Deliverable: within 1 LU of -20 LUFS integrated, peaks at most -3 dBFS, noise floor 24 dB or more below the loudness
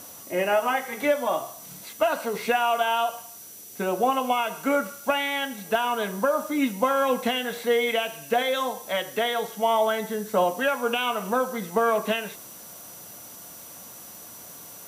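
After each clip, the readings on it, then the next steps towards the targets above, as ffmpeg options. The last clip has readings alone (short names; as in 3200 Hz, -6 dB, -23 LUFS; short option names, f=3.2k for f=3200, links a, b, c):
steady tone 5900 Hz; tone level -50 dBFS; noise floor -44 dBFS; noise floor target -49 dBFS; loudness -25.0 LUFS; peak -9.0 dBFS; loudness target -20.0 LUFS
-> -af "bandreject=f=5.9k:w=30"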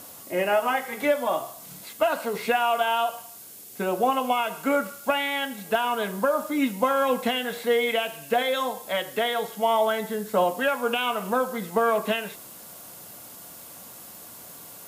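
steady tone none; noise floor -44 dBFS; noise floor target -49 dBFS
-> -af "afftdn=nr=6:nf=-44"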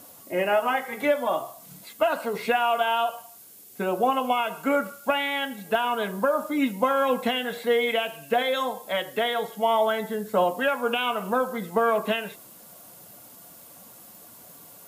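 noise floor -49 dBFS; noise floor target -50 dBFS
-> -af "afftdn=nr=6:nf=-49"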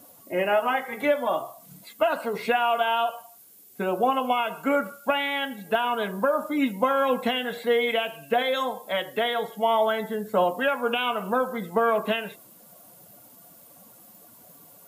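noise floor -52 dBFS; loudness -25.5 LUFS; peak -9.0 dBFS; loudness target -20.0 LUFS
-> -af "volume=5.5dB"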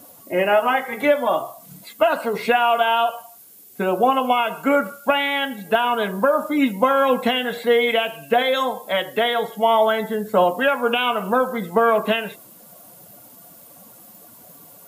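loudness -20.0 LUFS; peak -3.5 dBFS; noise floor -46 dBFS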